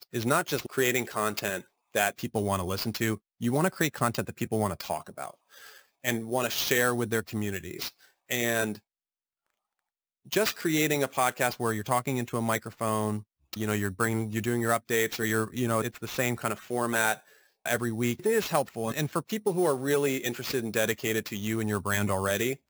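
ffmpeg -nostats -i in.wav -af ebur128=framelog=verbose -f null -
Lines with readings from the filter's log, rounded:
Integrated loudness:
  I:         -28.8 LUFS
  Threshold: -39.0 LUFS
Loudness range:
  LRA:         2.4 LU
  Threshold: -49.4 LUFS
  LRA low:   -30.7 LUFS
  LRA high:  -28.3 LUFS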